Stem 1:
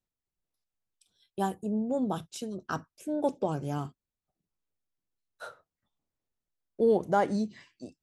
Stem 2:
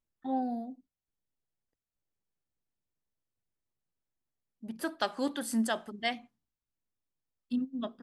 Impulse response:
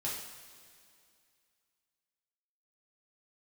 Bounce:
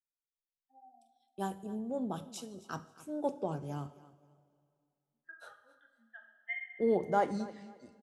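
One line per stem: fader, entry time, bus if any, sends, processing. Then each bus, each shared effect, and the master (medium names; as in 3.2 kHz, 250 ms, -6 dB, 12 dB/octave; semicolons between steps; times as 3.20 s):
-8.0 dB, 0.00 s, send -13 dB, echo send -17 dB, three bands expanded up and down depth 40%
+2.5 dB, 0.45 s, send -6 dB, no echo send, compression, threshold -32 dBFS, peak gain reduction 8 dB; band-pass filter 2 kHz, Q 1.9; spectral contrast expander 2.5:1; auto duck -10 dB, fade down 0.90 s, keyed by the first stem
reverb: on, pre-delay 3 ms
echo: feedback delay 266 ms, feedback 22%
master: none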